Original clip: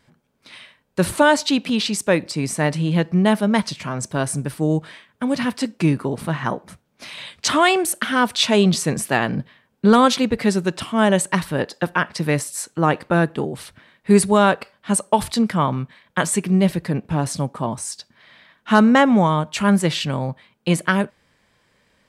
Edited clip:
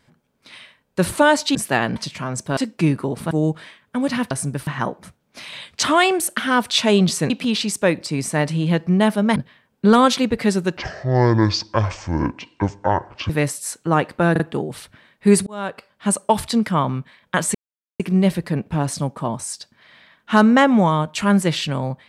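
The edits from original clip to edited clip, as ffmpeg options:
-filter_complex "[0:a]asplit=15[a][b][c][d][e][f][g][h][i][j][k][l][m][n][o];[a]atrim=end=1.552[p];[b]atrim=start=8.948:end=9.362[q];[c]atrim=start=3.608:end=4.222[r];[d]atrim=start=5.578:end=6.322[s];[e]atrim=start=4.578:end=5.582[t];[f]atrim=start=4.218:end=4.582[u];[g]atrim=start=6.318:end=8.952[v];[h]atrim=start=1.548:end=3.612[w];[i]atrim=start=9.358:end=10.774[x];[j]atrim=start=10.77:end=12.21,asetpts=PTS-STARTPTS,asetrate=25137,aresample=44100[y];[k]atrim=start=12.206:end=13.272[z];[l]atrim=start=13.228:end=13.272[aa];[m]atrim=start=13.228:end=14.3,asetpts=PTS-STARTPTS,afade=t=out:st=1.068:d=0.004:c=hsin[ab];[n]atrim=start=14.3:end=16.38,asetpts=PTS-STARTPTS,afade=t=in:d=0.62,afade=t=out:st=2.076:d=0.004:c=hsin,apad=pad_dur=0.45[ac];[o]atrim=start=16.38,asetpts=PTS-STARTPTS,afade=t=in:d=0.004:c=hsin[ad];[p][q]acrossfade=d=0.004:c1=hsin:c2=hsin[ae];[ae][r]acrossfade=d=0.004:c1=hsin:c2=hsin[af];[af][s]acrossfade=d=0.004:c1=hsin:c2=hsin[ag];[ag][t]acrossfade=d=0.004:c1=hsin:c2=hsin[ah];[ah][u]acrossfade=d=0.004:c1=hsin:c2=hsin[ai];[ai][v]acrossfade=d=0.004:c1=hsin:c2=hsin[aj];[aj][w]acrossfade=d=0.004:c1=hsin:c2=hsin[ak];[ak][x]acrossfade=d=0.004:c1=hsin:c2=hsin[al];[al][y]acrossfade=d=0.004:c1=hsin:c2=hsin[am];[am][z]acrossfade=d=0.004:c1=hsin:c2=hsin[an];[an][aa]acrossfade=d=0.004:c1=hsin:c2=hsin[ao];[ab][ac][ad]concat=n=3:v=0:a=1[ap];[ao][ap]acrossfade=d=0.004:c1=hsin:c2=hsin"

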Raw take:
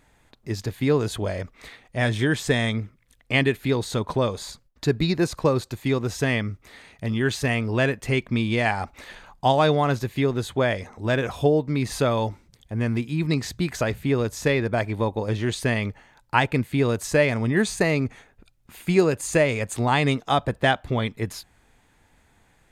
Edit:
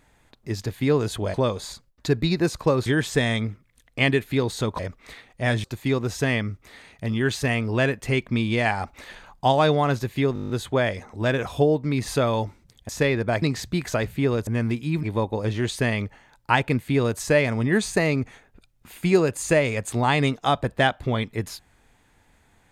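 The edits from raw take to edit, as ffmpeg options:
-filter_complex "[0:a]asplit=17[a][b][c][d][e][f][g][h][i][j][k][l][m][n][o][p][q];[a]atrim=end=1.342[r];[b]atrim=start=4.118:end=5.642[s];[c]atrim=start=2.188:end=4.122[t];[d]atrim=start=1.338:end=2.192[u];[e]atrim=start=5.638:end=10.362[v];[f]atrim=start=10.338:end=10.362[w];[g]atrim=start=10.338:end=10.362[x];[h]atrim=start=10.338:end=10.362[y];[i]atrim=start=10.338:end=10.362[z];[j]atrim=start=10.338:end=10.362[aa];[k]atrim=start=10.338:end=10.362[ab];[l]atrim=start=10.338:end=10.362[ac];[m]atrim=start=10.338:end=12.732[ad];[n]atrim=start=14.338:end=14.872[ae];[o]atrim=start=13.288:end=14.342[af];[p]atrim=start=12.728:end=13.292[ag];[q]atrim=start=14.868[ah];[r][s]acrossfade=d=0.004:c1=hsin:c2=hsin[ai];[ai][t]acrossfade=d=0.004:c1=hsin:c2=hsin[aj];[aj][u]acrossfade=d=0.004:c1=hsin:c2=hsin[ak];[ak][v]acrossfade=d=0.004:c1=hsin:c2=hsin[al];[al][w]acrossfade=d=0.004:c1=hsin:c2=hsin[am];[am][x]acrossfade=d=0.004:c1=hsin:c2=hsin[an];[an][y]acrossfade=d=0.004:c1=hsin:c2=hsin[ao];[ao][z]acrossfade=d=0.004:c1=hsin:c2=hsin[ap];[ap][aa]acrossfade=d=0.004:c1=hsin:c2=hsin[aq];[aq][ab]acrossfade=d=0.004:c1=hsin:c2=hsin[ar];[ar][ac]acrossfade=d=0.004:c1=hsin:c2=hsin[as];[as][ad]acrossfade=d=0.004:c1=hsin:c2=hsin[at];[at][ae]acrossfade=d=0.004:c1=hsin:c2=hsin[au];[au][af]acrossfade=d=0.004:c1=hsin:c2=hsin[av];[av][ag]acrossfade=d=0.004:c1=hsin:c2=hsin[aw];[aw][ah]acrossfade=d=0.004:c1=hsin:c2=hsin"

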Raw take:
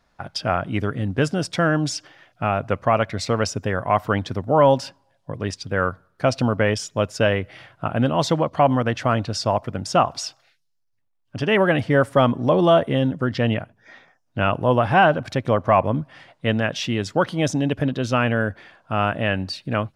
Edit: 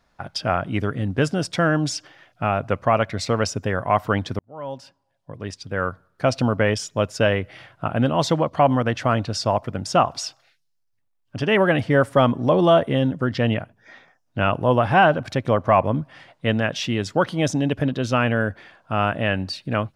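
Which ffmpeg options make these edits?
-filter_complex "[0:a]asplit=2[a][b];[a]atrim=end=4.39,asetpts=PTS-STARTPTS,afade=t=out:st=4.386:d=0.004:c=hsin[c];[b]atrim=start=4.39,asetpts=PTS-STARTPTS,afade=t=in:d=1.96[d];[c][d]concat=n=2:v=0:a=1"

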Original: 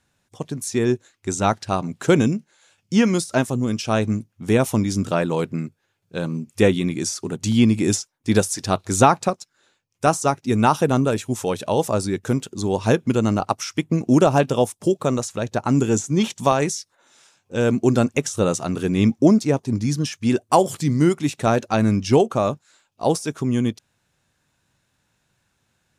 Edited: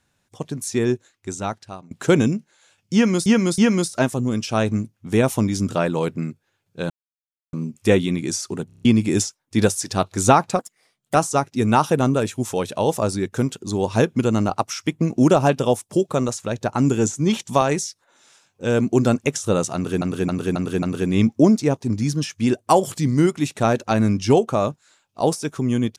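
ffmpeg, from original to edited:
-filter_complex "[0:a]asplit=17[a][b][c][d][e][f][g][h][i][j][k][l][m][n][o][p][q];[a]atrim=end=1.91,asetpts=PTS-STARTPTS,afade=t=out:st=0.79:d=1.12:silence=0.0668344[r];[b]atrim=start=1.91:end=3.262,asetpts=PTS-STARTPTS,afade=t=in:d=0.004:c=hsin:silence=0.0668344[s];[c]atrim=start=2.938:end=3.262[t];[d]atrim=start=2.938:end=6.26,asetpts=PTS-STARTPTS,afade=t=out:st=3.318:d=0.004:c=hsin,apad=pad_dur=0.63[u];[e]atrim=start=6.26:end=7.432,asetpts=PTS-STARTPTS,afade=t=in:d=0.004:c=hsin[v];[f]atrim=start=7.398:end=7.432[w];[g]atrim=start=7.398:end=7.432[x];[h]atrim=start=7.398:end=7.432[y];[i]atrim=start=7.398:end=7.432[z];[j]atrim=start=7.398:end=7.432[aa];[k]atrim=start=7.578:end=9.324[ab];[l]atrim=start=9.32:end=10.05,asetpts=PTS-STARTPTS,asetrate=58212,aresample=44100[ac];[m]atrim=start=10.046:end=18.922[ad];[n]atrim=start=18.648:end=18.922[ae];[o]atrim=start=18.648:end=18.922[af];[p]atrim=start=18.648:end=18.922[ag];[q]atrim=start=18.648[ah];[r][s]concat=n=2:v=0:a=1[ai];[ai][t]acrossfade=d=0.004:c1=hsin:c2=hsin[aj];[u][v]concat=n=2:v=0:a=1[ak];[aj][ak]acrossfade=d=0.004:c1=hsin:c2=hsin[al];[al][w]acrossfade=d=0.004:c1=hsin:c2=hsin[am];[am][x]acrossfade=d=0.004:c1=hsin:c2=hsin[an];[an][y]acrossfade=d=0.004:c1=hsin:c2=hsin[ao];[ao][z]acrossfade=d=0.004:c1=hsin:c2=hsin[ap];[ap][aa]acrossfade=d=0.004:c1=hsin:c2=hsin[aq];[aq][ab]acrossfade=d=0.004:c1=hsin:c2=hsin[ar];[ar][ac]acrossfade=d=0.004:c1=hsin:c2=hsin[as];[as][ad]acrossfade=d=0.004:c1=hsin:c2=hsin[at];[at][ae]acrossfade=d=0.004:c1=hsin:c2=hsin[au];[au][af]acrossfade=d=0.004:c1=hsin:c2=hsin[av];[av][ag]acrossfade=d=0.004:c1=hsin:c2=hsin[aw];[aw][ah]acrossfade=d=0.004:c1=hsin:c2=hsin"

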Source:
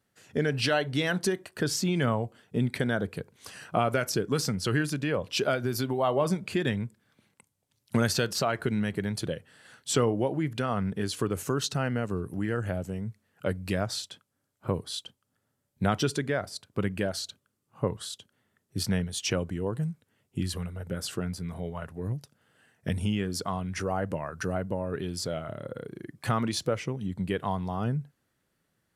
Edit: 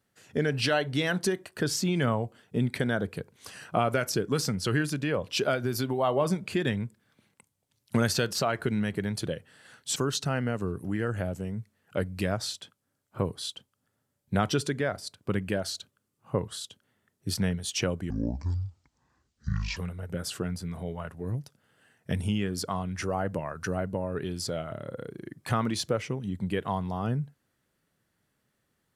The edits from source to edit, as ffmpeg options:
-filter_complex "[0:a]asplit=4[a][b][c][d];[a]atrim=end=9.962[e];[b]atrim=start=11.448:end=19.594[f];[c]atrim=start=19.59:end=20.54,asetpts=PTS-STARTPTS,asetrate=25137,aresample=44100[g];[d]atrim=start=20.536[h];[e][f]acrossfade=d=0.004:c1=hsin:c2=hsin[i];[i][g]acrossfade=d=0.004:c1=hsin:c2=hsin[j];[j][h]acrossfade=d=0.004:c1=hsin:c2=hsin"

